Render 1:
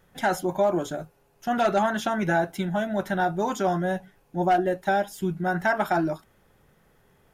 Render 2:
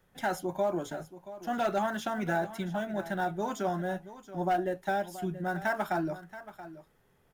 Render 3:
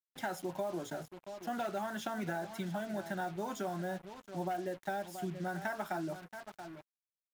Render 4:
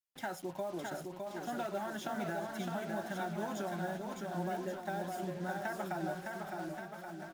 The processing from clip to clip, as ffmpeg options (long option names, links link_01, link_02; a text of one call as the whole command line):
ffmpeg -i in.wav -filter_complex "[0:a]acrossover=split=120|1200[link_01][link_02][link_03];[link_03]acrusher=bits=4:mode=log:mix=0:aa=0.000001[link_04];[link_01][link_02][link_04]amix=inputs=3:normalize=0,aecho=1:1:678:0.178,volume=-7dB" out.wav
ffmpeg -i in.wav -af "highpass=frequency=83:width=0.5412,highpass=frequency=83:width=1.3066,acompressor=threshold=-31dB:ratio=6,acrusher=bits=7:mix=0:aa=0.5,volume=-2.5dB" out.wav
ffmpeg -i in.wav -af "aecho=1:1:610|1128|1569|1944|2262:0.631|0.398|0.251|0.158|0.1,volume=-2dB" out.wav